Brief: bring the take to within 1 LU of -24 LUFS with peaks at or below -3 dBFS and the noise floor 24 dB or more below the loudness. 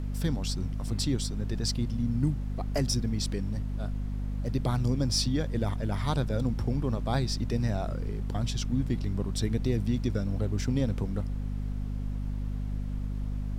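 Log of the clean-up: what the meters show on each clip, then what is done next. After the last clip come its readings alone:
hum 50 Hz; harmonics up to 250 Hz; hum level -29 dBFS; noise floor -33 dBFS; noise floor target -55 dBFS; loudness -31.0 LUFS; peak -14.5 dBFS; loudness target -24.0 LUFS
-> notches 50/100/150/200/250 Hz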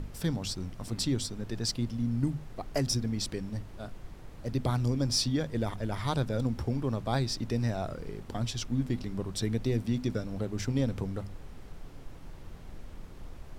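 hum none; noise floor -47 dBFS; noise floor target -56 dBFS
-> noise print and reduce 9 dB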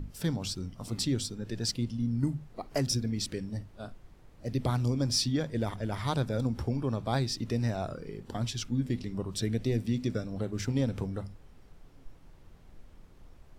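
noise floor -55 dBFS; noise floor target -57 dBFS
-> noise print and reduce 6 dB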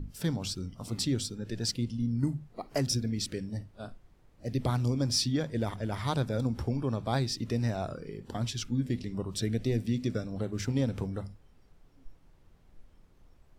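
noise floor -61 dBFS; loudness -32.5 LUFS; peak -16.5 dBFS; loudness target -24.0 LUFS
-> gain +8.5 dB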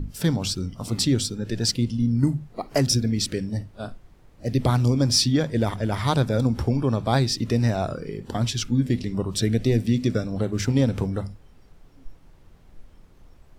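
loudness -24.0 LUFS; peak -8.0 dBFS; noise floor -52 dBFS

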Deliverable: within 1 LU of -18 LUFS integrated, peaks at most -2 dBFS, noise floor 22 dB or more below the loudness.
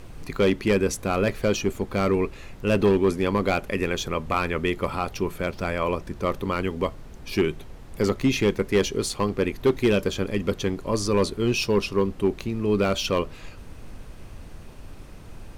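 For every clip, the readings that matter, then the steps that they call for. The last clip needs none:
clipped 0.6%; flat tops at -13.0 dBFS; noise floor -42 dBFS; noise floor target -47 dBFS; loudness -25.0 LUFS; peak -13.0 dBFS; loudness target -18.0 LUFS
-> clip repair -13 dBFS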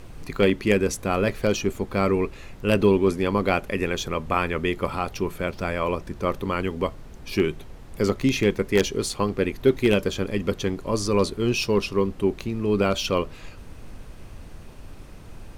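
clipped 0.0%; noise floor -42 dBFS; noise floor target -47 dBFS
-> noise print and reduce 6 dB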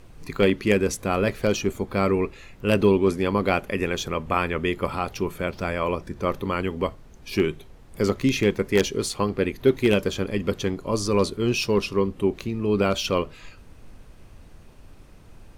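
noise floor -48 dBFS; loudness -24.5 LUFS; peak -4.0 dBFS; loudness target -18.0 LUFS
-> gain +6.5 dB; limiter -2 dBFS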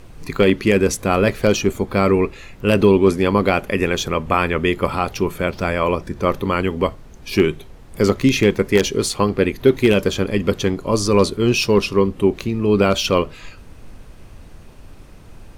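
loudness -18.0 LUFS; peak -2.0 dBFS; noise floor -41 dBFS

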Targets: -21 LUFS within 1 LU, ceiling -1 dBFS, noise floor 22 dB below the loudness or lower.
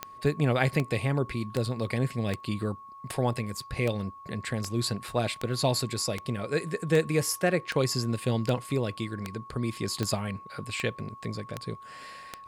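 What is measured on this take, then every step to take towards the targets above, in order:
clicks 17; steady tone 1100 Hz; tone level -44 dBFS; loudness -30.0 LUFS; peak -10.5 dBFS; loudness target -21.0 LUFS
-> de-click; notch 1100 Hz, Q 30; gain +9 dB

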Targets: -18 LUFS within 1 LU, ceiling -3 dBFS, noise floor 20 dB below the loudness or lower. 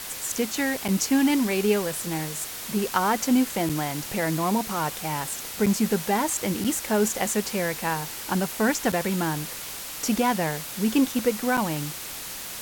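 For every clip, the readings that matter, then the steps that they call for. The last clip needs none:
dropouts 6; longest dropout 6.2 ms; noise floor -36 dBFS; noise floor target -46 dBFS; loudness -25.5 LUFS; peak -9.5 dBFS; loudness target -18.0 LUFS
-> interpolate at 0.88/3.69/5.66/6.64/8.92/11.57, 6.2 ms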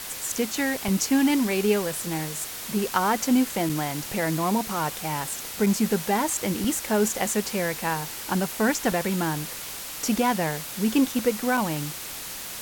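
dropouts 0; noise floor -36 dBFS; noise floor target -46 dBFS
-> denoiser 10 dB, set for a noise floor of -36 dBFS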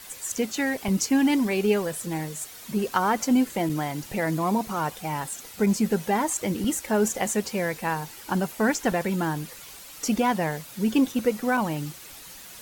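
noise floor -44 dBFS; noise floor target -46 dBFS
-> denoiser 6 dB, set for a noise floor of -44 dBFS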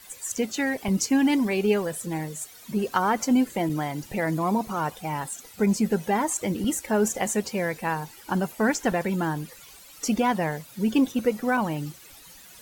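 noise floor -48 dBFS; loudness -26.0 LUFS; peak -10.0 dBFS; loudness target -18.0 LUFS
-> gain +8 dB; limiter -3 dBFS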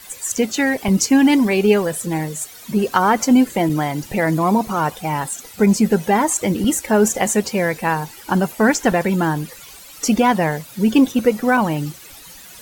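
loudness -18.0 LUFS; peak -3.0 dBFS; noise floor -40 dBFS

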